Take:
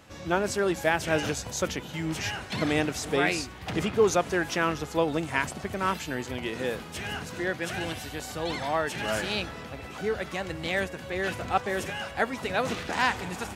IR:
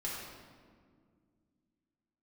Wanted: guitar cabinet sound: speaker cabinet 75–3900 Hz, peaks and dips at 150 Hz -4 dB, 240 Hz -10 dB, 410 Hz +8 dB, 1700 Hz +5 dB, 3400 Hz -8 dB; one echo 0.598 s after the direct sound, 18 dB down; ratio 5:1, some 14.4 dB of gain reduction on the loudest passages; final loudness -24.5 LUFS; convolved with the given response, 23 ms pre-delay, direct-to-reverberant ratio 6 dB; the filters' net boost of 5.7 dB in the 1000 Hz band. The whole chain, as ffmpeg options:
-filter_complex "[0:a]equalizer=f=1k:t=o:g=7,acompressor=threshold=-32dB:ratio=5,aecho=1:1:598:0.126,asplit=2[a][b];[1:a]atrim=start_sample=2205,adelay=23[c];[b][c]afir=irnorm=-1:irlink=0,volume=-8.5dB[d];[a][d]amix=inputs=2:normalize=0,highpass=75,equalizer=f=150:t=q:w=4:g=-4,equalizer=f=240:t=q:w=4:g=-10,equalizer=f=410:t=q:w=4:g=8,equalizer=f=1.7k:t=q:w=4:g=5,equalizer=f=3.4k:t=q:w=4:g=-8,lowpass=f=3.9k:w=0.5412,lowpass=f=3.9k:w=1.3066,volume=8.5dB"

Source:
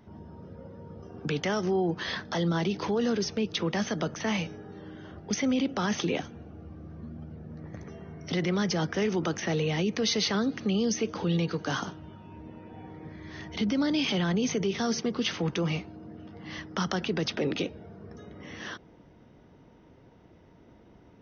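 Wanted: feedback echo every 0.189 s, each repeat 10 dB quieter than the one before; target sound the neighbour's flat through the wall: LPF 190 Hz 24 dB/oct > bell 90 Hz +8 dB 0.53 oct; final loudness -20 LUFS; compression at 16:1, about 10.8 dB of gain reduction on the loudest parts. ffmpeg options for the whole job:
-af "acompressor=threshold=-34dB:ratio=16,lowpass=f=190:w=0.5412,lowpass=f=190:w=1.3066,equalizer=f=90:t=o:w=0.53:g=8,aecho=1:1:189|378|567|756:0.316|0.101|0.0324|0.0104,volume=25dB"

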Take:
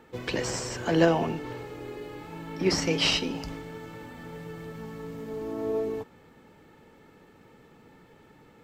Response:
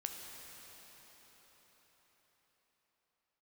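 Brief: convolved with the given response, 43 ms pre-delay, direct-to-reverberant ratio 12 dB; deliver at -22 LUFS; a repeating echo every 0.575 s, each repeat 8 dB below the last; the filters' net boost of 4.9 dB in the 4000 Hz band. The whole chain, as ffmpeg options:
-filter_complex "[0:a]equalizer=f=4k:t=o:g=7,aecho=1:1:575|1150|1725|2300|2875:0.398|0.159|0.0637|0.0255|0.0102,asplit=2[a][b];[1:a]atrim=start_sample=2205,adelay=43[c];[b][c]afir=irnorm=-1:irlink=0,volume=-11.5dB[d];[a][d]amix=inputs=2:normalize=0,volume=5dB"

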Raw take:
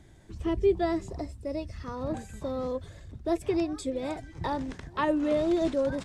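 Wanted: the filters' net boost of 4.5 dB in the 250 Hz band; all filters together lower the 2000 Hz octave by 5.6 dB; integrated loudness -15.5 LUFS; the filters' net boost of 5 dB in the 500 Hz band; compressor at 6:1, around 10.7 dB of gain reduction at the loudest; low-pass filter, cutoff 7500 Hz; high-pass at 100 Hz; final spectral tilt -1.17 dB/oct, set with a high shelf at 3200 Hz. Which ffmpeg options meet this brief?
-af "highpass=100,lowpass=7.5k,equalizer=f=250:t=o:g=3.5,equalizer=f=500:t=o:g=6,equalizer=f=2k:t=o:g=-6,highshelf=f=3.2k:g=-4,acompressor=threshold=-25dB:ratio=6,volume=15.5dB"

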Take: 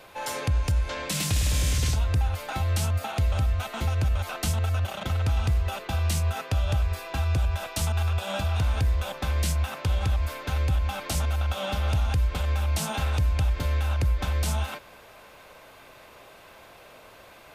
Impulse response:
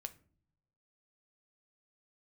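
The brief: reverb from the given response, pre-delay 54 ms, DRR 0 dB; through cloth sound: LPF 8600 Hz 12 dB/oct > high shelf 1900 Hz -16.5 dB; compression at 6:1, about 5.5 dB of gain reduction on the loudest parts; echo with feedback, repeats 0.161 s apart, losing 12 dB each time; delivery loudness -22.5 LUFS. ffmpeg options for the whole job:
-filter_complex "[0:a]acompressor=threshold=-26dB:ratio=6,aecho=1:1:161|322|483:0.251|0.0628|0.0157,asplit=2[a][b];[1:a]atrim=start_sample=2205,adelay=54[c];[b][c]afir=irnorm=-1:irlink=0,volume=4dB[d];[a][d]amix=inputs=2:normalize=0,lowpass=8.6k,highshelf=f=1.9k:g=-16.5,volume=5.5dB"

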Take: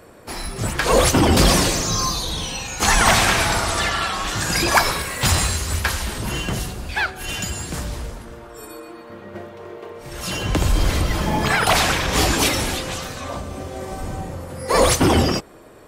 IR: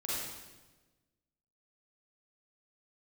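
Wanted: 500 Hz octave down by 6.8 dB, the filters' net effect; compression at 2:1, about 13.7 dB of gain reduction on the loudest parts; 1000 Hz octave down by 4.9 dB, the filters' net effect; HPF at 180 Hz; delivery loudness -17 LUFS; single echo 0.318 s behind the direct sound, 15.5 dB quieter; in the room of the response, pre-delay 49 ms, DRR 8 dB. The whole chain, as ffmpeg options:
-filter_complex "[0:a]highpass=180,equalizer=f=500:t=o:g=-7.5,equalizer=f=1k:t=o:g=-4,acompressor=threshold=-39dB:ratio=2,aecho=1:1:318:0.168,asplit=2[a][b];[1:a]atrim=start_sample=2205,adelay=49[c];[b][c]afir=irnorm=-1:irlink=0,volume=-12dB[d];[a][d]amix=inputs=2:normalize=0,volume=15.5dB"

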